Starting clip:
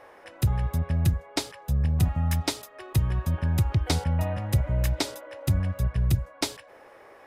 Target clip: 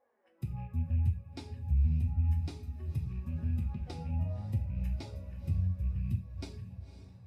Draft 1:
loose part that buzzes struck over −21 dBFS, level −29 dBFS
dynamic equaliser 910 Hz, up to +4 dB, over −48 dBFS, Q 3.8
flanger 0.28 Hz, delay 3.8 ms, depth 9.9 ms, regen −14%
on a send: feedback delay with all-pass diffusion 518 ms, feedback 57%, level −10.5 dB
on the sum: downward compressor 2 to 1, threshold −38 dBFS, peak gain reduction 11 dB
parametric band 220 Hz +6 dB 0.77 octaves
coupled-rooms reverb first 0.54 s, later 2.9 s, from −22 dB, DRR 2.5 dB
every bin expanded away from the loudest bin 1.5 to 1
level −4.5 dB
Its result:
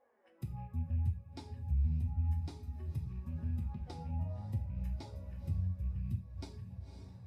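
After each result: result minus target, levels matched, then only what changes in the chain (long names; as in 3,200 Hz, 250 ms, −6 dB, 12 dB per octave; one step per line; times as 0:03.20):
downward compressor: peak gain reduction +4.5 dB; 1,000 Hz band +4.0 dB
change: downward compressor 2 to 1, threshold −29 dBFS, peak gain reduction 6.5 dB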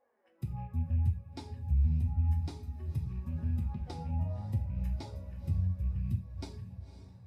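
1,000 Hz band +3.5 dB
change: dynamic equaliser 2,600 Hz, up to +4 dB, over −48 dBFS, Q 3.8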